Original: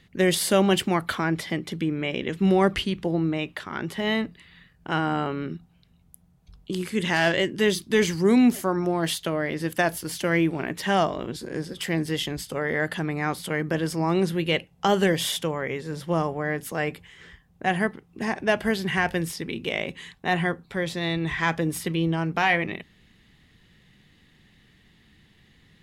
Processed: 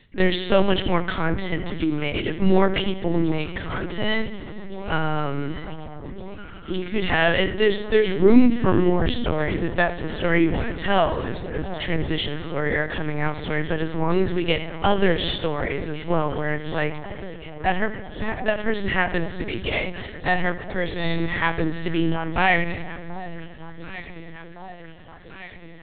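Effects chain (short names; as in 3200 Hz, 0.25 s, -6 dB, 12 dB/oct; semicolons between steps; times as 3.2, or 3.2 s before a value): 8.21–8.9 low shelf 320 Hz +5 dB; echo with dull and thin repeats by turns 0.732 s, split 1100 Hz, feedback 79%, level -14 dB; on a send at -11.5 dB: reverb RT60 3.6 s, pre-delay 53 ms; on the sum: LPC vocoder at 8 kHz pitch kept; ending taper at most 140 dB/s; gain +3 dB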